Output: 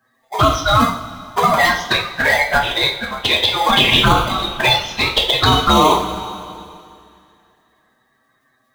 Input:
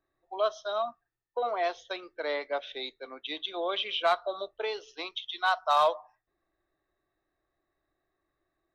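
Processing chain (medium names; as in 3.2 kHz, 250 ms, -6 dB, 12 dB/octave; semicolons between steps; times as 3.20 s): coarse spectral quantiser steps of 30 dB; high-pass 840 Hz 24 dB/octave; in parallel at -6 dB: sample-and-hold 32×; on the sum: touch-sensitive flanger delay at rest 7.8 ms, full sweep at -26 dBFS; two-slope reverb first 0.46 s, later 2.5 s, from -17 dB, DRR 0.5 dB; loudness maximiser +23 dB; trim -1 dB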